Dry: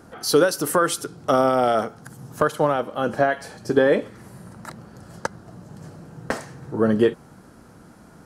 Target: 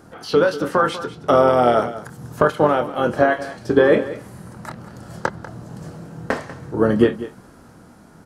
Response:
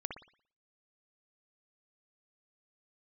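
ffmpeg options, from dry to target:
-filter_complex "[0:a]asplit=2[a][b];[b]asetrate=29433,aresample=44100,atempo=1.49831,volume=-12dB[c];[a][c]amix=inputs=2:normalize=0,acrossover=split=4100[d][e];[d]asplit=2[f][g];[g]adelay=25,volume=-7.5dB[h];[f][h]amix=inputs=2:normalize=0[i];[e]acompressor=threshold=-50dB:ratio=6[j];[i][j]amix=inputs=2:normalize=0,aecho=1:1:193:0.178,dynaudnorm=f=100:g=17:m=6dB"

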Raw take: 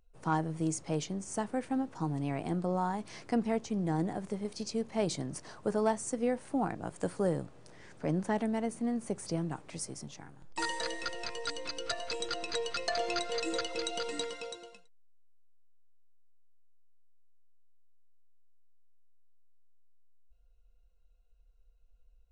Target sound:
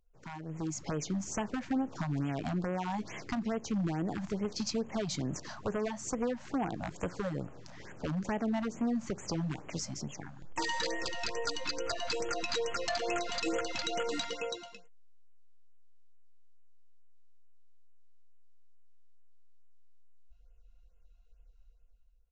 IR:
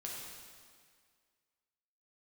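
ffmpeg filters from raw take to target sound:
-af "acompressor=threshold=-32dB:ratio=16,aresample=16000,aeval=exprs='0.0299*(abs(mod(val(0)/0.0299+3,4)-2)-1)':c=same,aresample=44100,dynaudnorm=f=110:g=11:m=11dB,afftfilt=real='re*(1-between(b*sr/1024,360*pow(4800/360,0.5+0.5*sin(2*PI*2.3*pts/sr))/1.41,360*pow(4800/360,0.5+0.5*sin(2*PI*2.3*pts/sr))*1.41))':imag='im*(1-between(b*sr/1024,360*pow(4800/360,0.5+0.5*sin(2*PI*2.3*pts/sr))/1.41,360*pow(4800/360,0.5+0.5*sin(2*PI*2.3*pts/sr))*1.41))':win_size=1024:overlap=0.75,volume=-5.5dB"

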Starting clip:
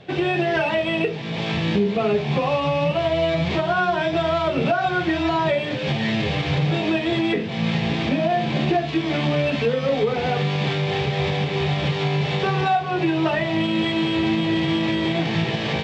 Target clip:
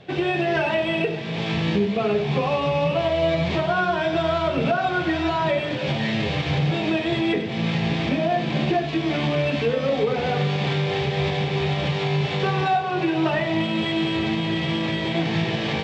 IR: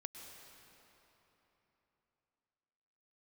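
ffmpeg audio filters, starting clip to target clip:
-filter_complex "[0:a]asplit=2[a][b];[1:a]atrim=start_sample=2205,adelay=97[c];[b][c]afir=irnorm=-1:irlink=0,volume=-6dB[d];[a][d]amix=inputs=2:normalize=0,volume=-1.5dB"

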